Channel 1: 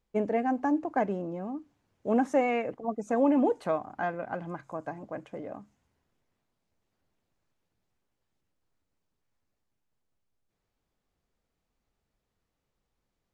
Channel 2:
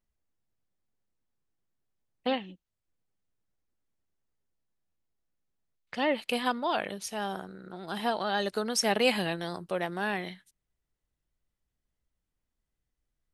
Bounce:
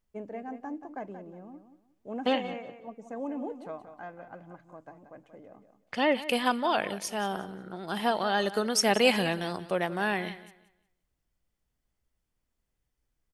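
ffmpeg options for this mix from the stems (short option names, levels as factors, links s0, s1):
-filter_complex "[0:a]volume=0.266,asplit=2[s0][s1];[s1]volume=0.299[s2];[1:a]bandreject=f=3900:w=12,volume=1.33,asplit=2[s3][s4];[s4]volume=0.158[s5];[s2][s5]amix=inputs=2:normalize=0,aecho=0:1:180|360|540|720:1|0.25|0.0625|0.0156[s6];[s0][s3][s6]amix=inputs=3:normalize=0"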